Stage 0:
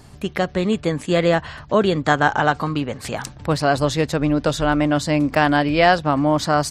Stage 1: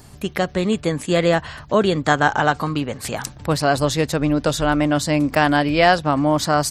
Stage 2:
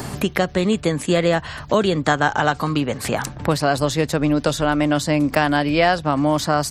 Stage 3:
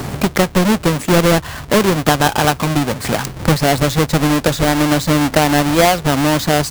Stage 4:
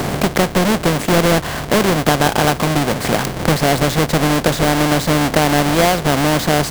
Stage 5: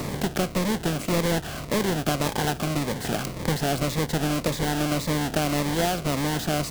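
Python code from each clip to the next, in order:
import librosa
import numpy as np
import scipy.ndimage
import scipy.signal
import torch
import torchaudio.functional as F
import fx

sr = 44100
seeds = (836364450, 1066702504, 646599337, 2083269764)

y1 = fx.high_shelf(x, sr, hz=8800.0, db=11.0)
y2 = fx.band_squash(y1, sr, depth_pct=70)
y2 = F.gain(torch.from_numpy(y2), -1.0).numpy()
y3 = fx.halfwave_hold(y2, sr)
y4 = fx.bin_compress(y3, sr, power=0.6)
y4 = F.gain(torch.from_numpy(y4), -4.0).numpy()
y5 = fx.notch_cascade(y4, sr, direction='falling', hz=1.8)
y5 = F.gain(torch.from_numpy(y5), -9.0).numpy()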